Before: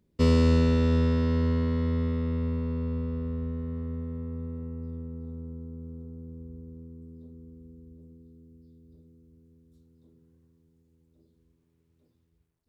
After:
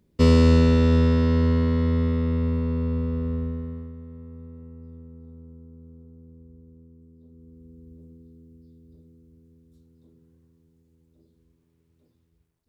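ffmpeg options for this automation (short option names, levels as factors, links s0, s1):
-af "volume=5.01,afade=t=out:st=3.35:d=0.58:silence=0.281838,afade=t=in:st=7.18:d=0.76:silence=0.354813"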